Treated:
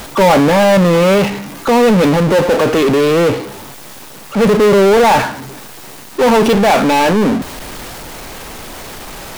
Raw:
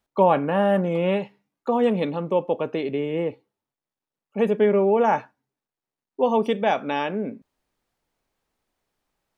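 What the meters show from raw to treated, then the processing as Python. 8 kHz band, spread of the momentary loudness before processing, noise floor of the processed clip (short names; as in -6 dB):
n/a, 9 LU, -34 dBFS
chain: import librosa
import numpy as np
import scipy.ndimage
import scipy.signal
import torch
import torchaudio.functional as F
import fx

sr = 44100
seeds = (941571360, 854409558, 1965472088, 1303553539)

y = fx.transient(x, sr, attack_db=-4, sustain_db=4)
y = fx.power_curve(y, sr, exponent=0.35)
y = y * librosa.db_to_amplitude(3.5)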